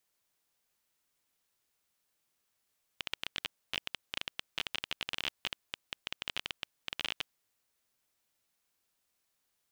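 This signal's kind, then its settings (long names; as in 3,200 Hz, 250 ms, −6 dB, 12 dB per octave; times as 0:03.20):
Geiger counter clicks 18 per second −16.5 dBFS 4.26 s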